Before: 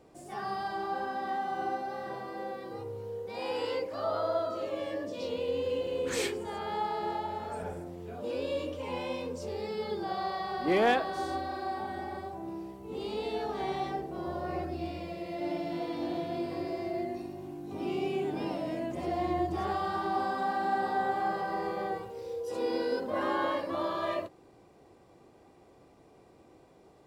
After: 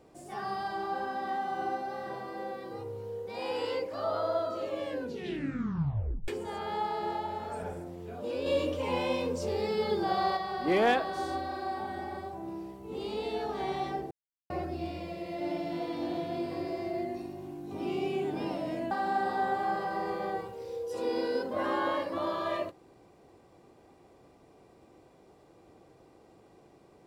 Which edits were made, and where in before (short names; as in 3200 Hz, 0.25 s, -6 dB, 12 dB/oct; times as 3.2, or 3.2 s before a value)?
4.87 tape stop 1.41 s
8.46–10.37 gain +5 dB
14.11–14.5 mute
18.91–20.48 cut